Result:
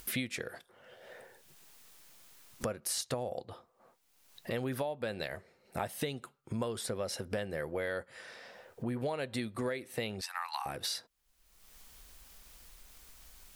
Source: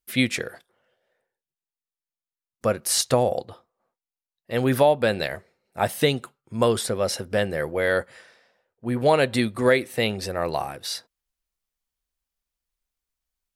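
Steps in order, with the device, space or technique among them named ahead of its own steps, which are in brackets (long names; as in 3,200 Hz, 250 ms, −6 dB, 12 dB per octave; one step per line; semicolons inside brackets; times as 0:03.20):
0:10.21–0:10.66: Chebyshev high-pass filter 830 Hz, order 6
upward and downward compression (upward compression, threshold −31 dBFS; downward compressor 8 to 1, threshold −33 dBFS, peak gain reduction 19.5 dB)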